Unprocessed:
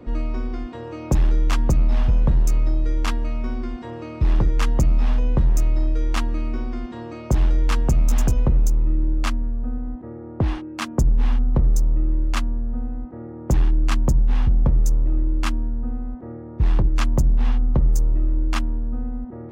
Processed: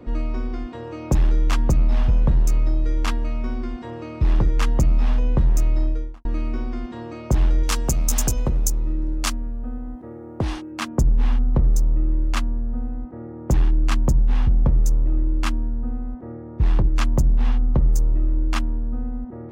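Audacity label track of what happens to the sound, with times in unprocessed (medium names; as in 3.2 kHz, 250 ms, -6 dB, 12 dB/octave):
5.800000	6.250000	studio fade out
7.630000	10.720000	tone controls bass -4 dB, treble +12 dB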